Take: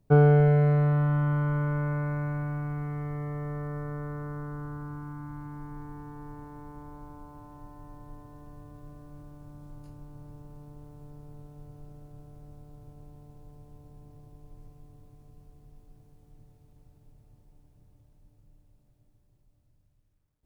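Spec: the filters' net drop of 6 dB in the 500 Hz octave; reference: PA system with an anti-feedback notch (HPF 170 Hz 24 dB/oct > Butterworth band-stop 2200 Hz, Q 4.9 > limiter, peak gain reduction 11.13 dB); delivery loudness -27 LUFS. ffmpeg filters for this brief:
-af "highpass=f=170:w=0.5412,highpass=f=170:w=1.3066,asuperstop=centerf=2200:order=8:qfactor=4.9,equalizer=f=500:t=o:g=-7,volume=10dB,alimiter=limit=-14dB:level=0:latency=1"

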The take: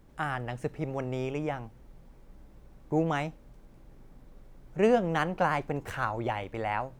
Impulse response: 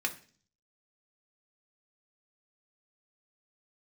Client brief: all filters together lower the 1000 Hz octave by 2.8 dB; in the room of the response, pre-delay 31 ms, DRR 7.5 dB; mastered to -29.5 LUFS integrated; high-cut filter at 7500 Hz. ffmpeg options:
-filter_complex "[0:a]lowpass=7.5k,equalizer=f=1k:t=o:g=-4,asplit=2[a][b];[1:a]atrim=start_sample=2205,adelay=31[c];[b][c]afir=irnorm=-1:irlink=0,volume=-13dB[d];[a][d]amix=inputs=2:normalize=0,volume=2dB"

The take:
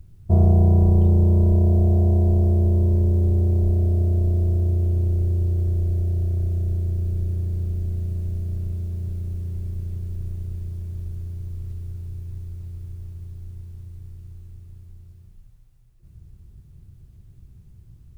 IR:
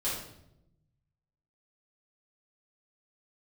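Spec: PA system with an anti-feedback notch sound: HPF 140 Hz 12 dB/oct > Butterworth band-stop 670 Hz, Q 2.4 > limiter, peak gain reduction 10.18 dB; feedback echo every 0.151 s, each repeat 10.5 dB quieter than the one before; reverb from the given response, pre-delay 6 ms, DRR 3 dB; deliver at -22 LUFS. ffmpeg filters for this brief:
-filter_complex "[0:a]aecho=1:1:151|302|453:0.299|0.0896|0.0269,asplit=2[a][b];[1:a]atrim=start_sample=2205,adelay=6[c];[b][c]afir=irnorm=-1:irlink=0,volume=-9dB[d];[a][d]amix=inputs=2:normalize=0,highpass=140,asuperstop=centerf=670:order=8:qfactor=2.4,volume=3.5dB,alimiter=limit=-13dB:level=0:latency=1"

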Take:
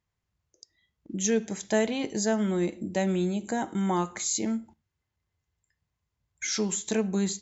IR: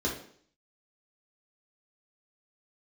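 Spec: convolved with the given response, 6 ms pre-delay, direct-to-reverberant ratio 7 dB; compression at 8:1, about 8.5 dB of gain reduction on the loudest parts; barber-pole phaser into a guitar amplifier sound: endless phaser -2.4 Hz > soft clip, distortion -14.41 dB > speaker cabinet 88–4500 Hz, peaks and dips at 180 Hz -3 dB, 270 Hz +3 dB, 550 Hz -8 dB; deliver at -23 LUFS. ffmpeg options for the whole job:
-filter_complex "[0:a]acompressor=threshold=-29dB:ratio=8,asplit=2[a][b];[1:a]atrim=start_sample=2205,adelay=6[c];[b][c]afir=irnorm=-1:irlink=0,volume=-15dB[d];[a][d]amix=inputs=2:normalize=0,asplit=2[e][f];[f]afreqshift=-2.4[g];[e][g]amix=inputs=2:normalize=1,asoftclip=threshold=-30dB,highpass=88,equalizer=f=180:t=q:w=4:g=-3,equalizer=f=270:t=q:w=4:g=3,equalizer=f=550:t=q:w=4:g=-8,lowpass=f=4.5k:w=0.5412,lowpass=f=4.5k:w=1.3066,volume=17dB"

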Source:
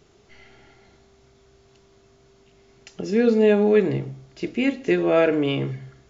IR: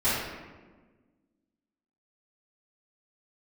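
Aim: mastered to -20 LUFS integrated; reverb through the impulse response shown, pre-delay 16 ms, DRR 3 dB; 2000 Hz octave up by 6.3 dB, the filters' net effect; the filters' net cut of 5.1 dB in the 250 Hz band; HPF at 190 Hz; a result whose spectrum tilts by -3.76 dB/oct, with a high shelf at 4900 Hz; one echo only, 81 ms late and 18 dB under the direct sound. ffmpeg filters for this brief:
-filter_complex "[0:a]highpass=190,equalizer=f=250:t=o:g=-5,equalizer=f=2k:t=o:g=9,highshelf=f=4.9k:g=-7,aecho=1:1:81:0.126,asplit=2[a][b];[1:a]atrim=start_sample=2205,adelay=16[c];[b][c]afir=irnorm=-1:irlink=0,volume=-17dB[d];[a][d]amix=inputs=2:normalize=0"

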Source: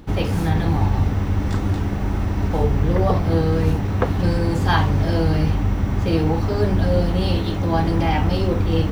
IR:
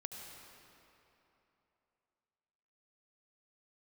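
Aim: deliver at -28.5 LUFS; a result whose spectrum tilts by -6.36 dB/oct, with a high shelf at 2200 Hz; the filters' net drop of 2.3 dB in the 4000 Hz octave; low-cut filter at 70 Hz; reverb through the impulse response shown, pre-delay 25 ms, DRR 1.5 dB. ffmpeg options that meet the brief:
-filter_complex "[0:a]highpass=70,highshelf=f=2.2k:g=4,equalizer=f=4k:t=o:g=-7,asplit=2[a][b];[1:a]atrim=start_sample=2205,adelay=25[c];[b][c]afir=irnorm=-1:irlink=0,volume=0.5dB[d];[a][d]amix=inputs=2:normalize=0,volume=-9.5dB"

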